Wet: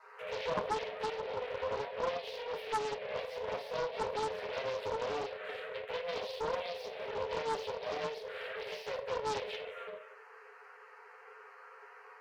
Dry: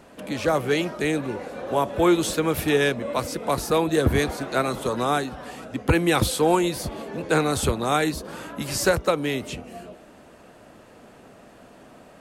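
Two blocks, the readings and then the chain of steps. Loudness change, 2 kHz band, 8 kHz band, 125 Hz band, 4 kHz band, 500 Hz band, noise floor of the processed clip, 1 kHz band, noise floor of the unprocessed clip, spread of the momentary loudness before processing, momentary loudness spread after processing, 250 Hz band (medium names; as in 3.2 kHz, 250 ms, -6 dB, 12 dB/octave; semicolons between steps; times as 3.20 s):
-14.5 dB, -14.0 dB, -23.5 dB, -25.5 dB, -12.5 dB, -12.0 dB, -56 dBFS, -11.0 dB, -49 dBFS, 13 LU, 18 LU, -28.0 dB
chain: comb filter that takes the minimum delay 9.5 ms; treble shelf 6.2 kHz +9.5 dB; compression 4:1, threshold -32 dBFS, peak gain reduction 13.5 dB; peak limiter -24 dBFS, peak gain reduction 5.5 dB; touch-sensitive phaser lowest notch 520 Hz, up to 1.3 kHz, full sweep at -31.5 dBFS; brick-wall FIR high-pass 410 Hz; distance through air 300 m; simulated room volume 43 m³, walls mixed, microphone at 0.92 m; loudspeaker Doppler distortion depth 0.76 ms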